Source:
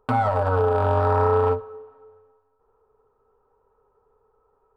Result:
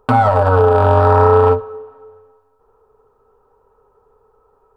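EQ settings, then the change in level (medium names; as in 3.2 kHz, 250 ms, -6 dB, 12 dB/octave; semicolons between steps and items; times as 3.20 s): peaking EQ 2.1 kHz -3.5 dB 0.24 oct; +9.0 dB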